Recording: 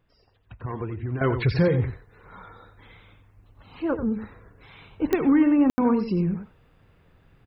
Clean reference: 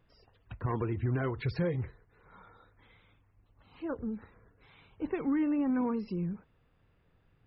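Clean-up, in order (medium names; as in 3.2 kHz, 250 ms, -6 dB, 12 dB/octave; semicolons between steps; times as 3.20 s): de-click; room tone fill 5.70–5.78 s; inverse comb 89 ms -10 dB; gain correction -10.5 dB, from 1.21 s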